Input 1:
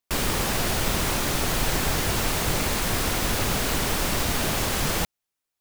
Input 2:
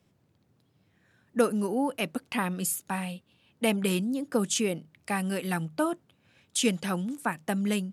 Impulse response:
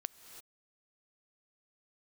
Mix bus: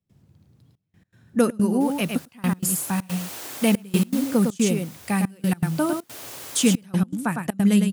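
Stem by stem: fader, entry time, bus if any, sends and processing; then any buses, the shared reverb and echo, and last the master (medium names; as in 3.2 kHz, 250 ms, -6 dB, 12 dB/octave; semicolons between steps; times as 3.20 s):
2.41 s -23.5 dB -> 3.16 s -13.5 dB -> 4.18 s -13.5 dB -> 4.60 s -23.5 dB -> 5.57 s -23.5 dB -> 6.20 s -15.5 dB, 1.70 s, no send, echo send -7 dB, elliptic high-pass 270 Hz; treble shelf 5.4 kHz +9 dB
+1.5 dB, 0.00 s, no send, echo send -5.5 dB, tone controls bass +12 dB, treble +4 dB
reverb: none
echo: delay 106 ms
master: trance gate ".xxxxxxx..x.xxxx" 160 bpm -24 dB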